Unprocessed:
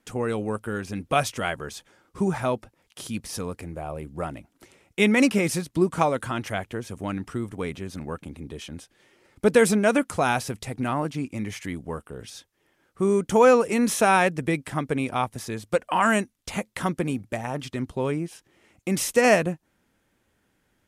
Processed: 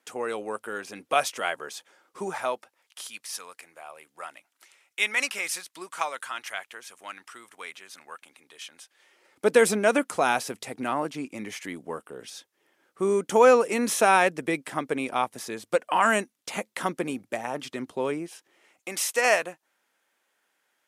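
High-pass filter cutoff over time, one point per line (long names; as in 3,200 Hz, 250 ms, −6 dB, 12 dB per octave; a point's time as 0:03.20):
0:02.21 470 Hz
0:03.20 1,200 Hz
0:08.68 1,200 Hz
0:09.58 300 Hz
0:18.12 300 Hz
0:18.98 690 Hz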